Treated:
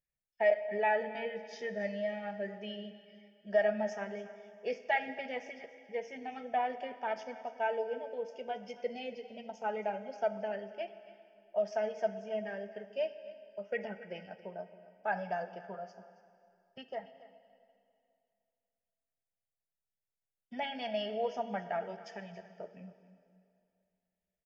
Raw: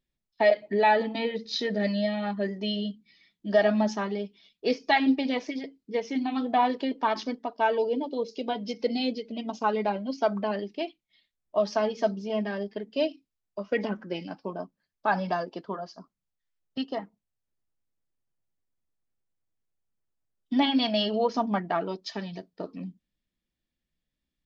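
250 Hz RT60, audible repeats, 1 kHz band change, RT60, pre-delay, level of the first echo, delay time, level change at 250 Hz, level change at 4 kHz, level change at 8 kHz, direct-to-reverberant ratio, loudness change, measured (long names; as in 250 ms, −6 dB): 2.6 s, 2, −9.0 dB, 2.5 s, 22 ms, −17.0 dB, 277 ms, −16.5 dB, −14.5 dB, can't be measured, 10.5 dB, −8.5 dB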